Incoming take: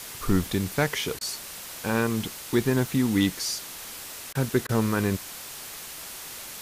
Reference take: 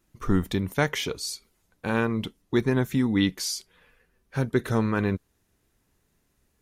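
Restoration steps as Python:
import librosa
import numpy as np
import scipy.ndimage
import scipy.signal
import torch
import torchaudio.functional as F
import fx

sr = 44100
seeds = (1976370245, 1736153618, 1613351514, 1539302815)

y = fx.fix_declip(x, sr, threshold_db=-11.5)
y = fx.fix_interpolate(y, sr, at_s=(1.19, 4.33, 4.67), length_ms=19.0)
y = fx.noise_reduce(y, sr, print_start_s=3.85, print_end_s=4.35, reduce_db=30.0)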